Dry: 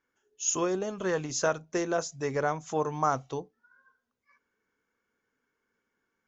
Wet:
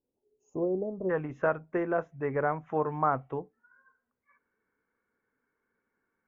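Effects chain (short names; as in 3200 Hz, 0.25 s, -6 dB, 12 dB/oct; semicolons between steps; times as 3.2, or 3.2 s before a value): inverse Chebyshev low-pass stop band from 1400 Hz, stop band 40 dB, from 1.09 s stop band from 4200 Hz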